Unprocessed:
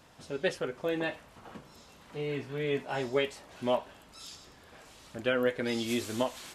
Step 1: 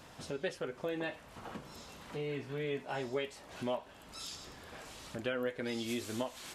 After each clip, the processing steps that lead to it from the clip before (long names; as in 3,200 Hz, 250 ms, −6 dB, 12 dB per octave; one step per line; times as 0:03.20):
downward compressor 2 to 1, threshold −46 dBFS, peak gain reduction 12.5 dB
level +4 dB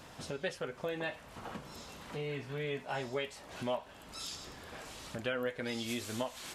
dynamic equaliser 330 Hz, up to −6 dB, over −51 dBFS, Q 1.7
level +2 dB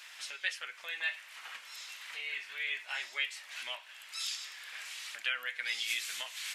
high-pass with resonance 2,100 Hz, resonance Q 1.9
level +4 dB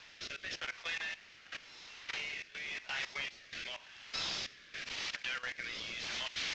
variable-slope delta modulation 32 kbit/s
output level in coarse steps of 15 dB
rotating-speaker cabinet horn 0.9 Hz
level +8 dB